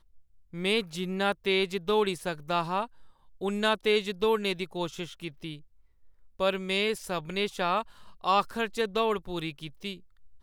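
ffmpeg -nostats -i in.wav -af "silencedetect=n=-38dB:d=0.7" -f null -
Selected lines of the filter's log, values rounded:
silence_start: 5.56
silence_end: 6.39 | silence_duration: 0.83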